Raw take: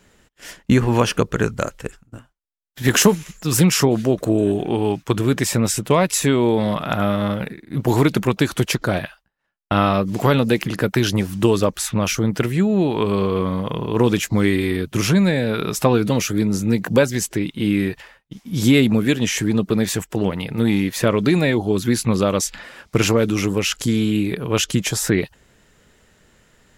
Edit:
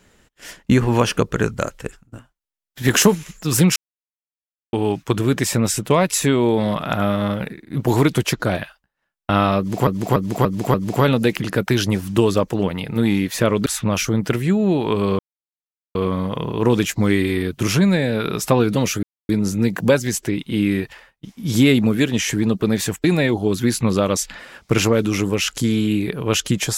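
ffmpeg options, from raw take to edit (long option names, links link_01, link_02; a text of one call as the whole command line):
ffmpeg -i in.wav -filter_complex "[0:a]asplit=13[link_01][link_02][link_03][link_04][link_05][link_06][link_07][link_08][link_09][link_10][link_11][link_12][link_13];[link_01]atrim=end=3.76,asetpts=PTS-STARTPTS,afade=type=out:start_time=3.756:duration=0.004:curve=hsin[link_14];[link_02]atrim=start=3.76:end=4.73,asetpts=PTS-STARTPTS,volume=0[link_15];[link_03]atrim=start=4.73:end=8.132,asetpts=PTS-STARTPTS,afade=type=in:duration=0.004:curve=hsin[link_16];[link_04]atrim=start=8.548:end=10.292[link_17];[link_05]atrim=start=9.998:end=10.292[link_18];[link_06]atrim=start=9.998:end=10.292[link_19];[link_07]atrim=start=9.998:end=10.292[link_20];[link_08]atrim=start=9.998:end=11.762[link_21];[link_09]atrim=start=20.118:end=21.282[link_22];[link_10]atrim=start=11.758:end=13.29,asetpts=PTS-STARTPTS,afade=type=out:start_time=1.528:duration=0.004:curve=hsin,apad=pad_dur=0.76[link_23];[link_11]atrim=start=13.29:end=16.37,asetpts=PTS-STARTPTS,afade=type=in:duration=0.004:curve=hsin,afade=type=out:start_time=3.076:duration=0.004:curve=hsin,apad=pad_dur=0.26[link_24];[link_12]atrim=start=16.37:end=20.122,asetpts=PTS-STARTPTS,afade=type=in:duration=0.004:curve=hsin[link_25];[link_13]atrim=start=21.278[link_26];[link_14][link_15][link_16]concat=n=3:v=0:a=1[link_27];[link_27][link_17]acrossfade=duration=0.004:curve1=hsin:curve2=hsin[link_28];[link_28][link_18]acrossfade=duration=0.004:curve1=hsin:curve2=hsin[link_29];[link_29][link_19]acrossfade=duration=0.004:curve1=hsin:curve2=hsin[link_30];[link_30][link_20]acrossfade=duration=0.004:curve1=hsin:curve2=hsin[link_31];[link_31][link_21]acrossfade=duration=0.004:curve1=hsin:curve2=hsin[link_32];[link_32][link_22]acrossfade=duration=0.004:curve1=hsin:curve2=hsin[link_33];[link_23][link_24][link_25]concat=n=3:v=0:a=1[link_34];[link_33][link_34]acrossfade=duration=0.004:curve1=hsin:curve2=hsin[link_35];[link_35][link_26]acrossfade=duration=0.004:curve1=hsin:curve2=hsin" out.wav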